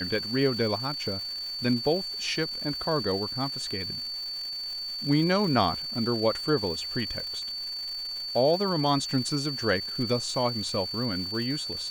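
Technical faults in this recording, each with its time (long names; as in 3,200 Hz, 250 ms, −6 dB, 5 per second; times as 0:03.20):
surface crackle 580 per second −37 dBFS
whistle 4,500 Hz −32 dBFS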